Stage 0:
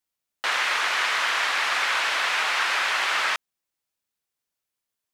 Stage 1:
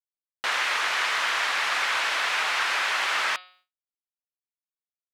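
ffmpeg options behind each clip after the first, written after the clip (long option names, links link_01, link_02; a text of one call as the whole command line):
ffmpeg -i in.wav -af "acontrast=60,bandreject=frequency=182.5:width_type=h:width=4,bandreject=frequency=365:width_type=h:width=4,bandreject=frequency=547.5:width_type=h:width=4,bandreject=frequency=730:width_type=h:width=4,bandreject=frequency=912.5:width_type=h:width=4,bandreject=frequency=1095:width_type=h:width=4,bandreject=frequency=1277.5:width_type=h:width=4,bandreject=frequency=1460:width_type=h:width=4,bandreject=frequency=1642.5:width_type=h:width=4,bandreject=frequency=1825:width_type=h:width=4,bandreject=frequency=2007.5:width_type=h:width=4,bandreject=frequency=2190:width_type=h:width=4,bandreject=frequency=2372.5:width_type=h:width=4,bandreject=frequency=2555:width_type=h:width=4,bandreject=frequency=2737.5:width_type=h:width=4,bandreject=frequency=2920:width_type=h:width=4,bandreject=frequency=3102.5:width_type=h:width=4,bandreject=frequency=3285:width_type=h:width=4,bandreject=frequency=3467.5:width_type=h:width=4,bandreject=frequency=3650:width_type=h:width=4,bandreject=frequency=3832.5:width_type=h:width=4,bandreject=frequency=4015:width_type=h:width=4,bandreject=frequency=4197.5:width_type=h:width=4,bandreject=frequency=4380:width_type=h:width=4,bandreject=frequency=4562.5:width_type=h:width=4,bandreject=frequency=4745:width_type=h:width=4,bandreject=frequency=4927.5:width_type=h:width=4,agate=range=-33dB:threshold=-46dB:ratio=3:detection=peak,volume=-7.5dB" out.wav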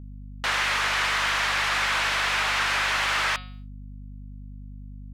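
ffmpeg -i in.wav -af "aeval=exprs='val(0)+0.00891*(sin(2*PI*50*n/s)+sin(2*PI*2*50*n/s)/2+sin(2*PI*3*50*n/s)/3+sin(2*PI*4*50*n/s)/4+sin(2*PI*5*50*n/s)/5)':channel_layout=same,asoftclip=type=tanh:threshold=-19.5dB,volume=2.5dB" out.wav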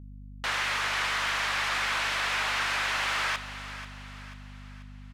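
ffmpeg -i in.wav -af "aecho=1:1:488|976|1464|1952|2440:0.224|0.105|0.0495|0.0232|0.0109,volume=-4.5dB" out.wav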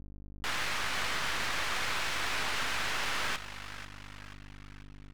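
ffmpeg -i in.wav -af "aeval=exprs='max(val(0),0)':channel_layout=same" out.wav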